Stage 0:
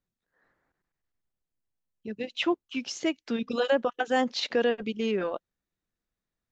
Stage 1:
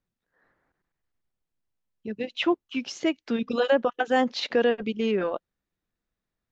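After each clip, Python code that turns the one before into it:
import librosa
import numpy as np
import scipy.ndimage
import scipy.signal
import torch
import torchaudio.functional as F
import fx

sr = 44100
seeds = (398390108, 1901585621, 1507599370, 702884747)

y = fx.high_shelf(x, sr, hz=6500.0, db=-11.5)
y = y * librosa.db_to_amplitude(3.0)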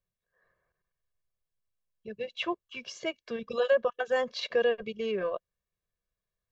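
y = x + 0.97 * np.pad(x, (int(1.8 * sr / 1000.0), 0))[:len(x)]
y = y * librosa.db_to_amplitude(-8.0)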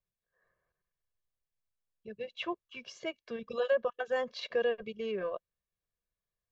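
y = fx.high_shelf(x, sr, hz=6100.0, db=-6.5)
y = y * librosa.db_to_amplitude(-4.0)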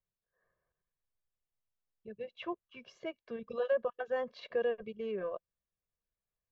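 y = fx.lowpass(x, sr, hz=1500.0, slope=6)
y = y * librosa.db_to_amplitude(-1.5)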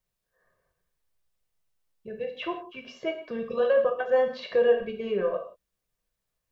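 y = fx.rev_gated(x, sr, seeds[0], gate_ms=200, shape='falling', drr_db=3.0)
y = y * librosa.db_to_amplitude(8.0)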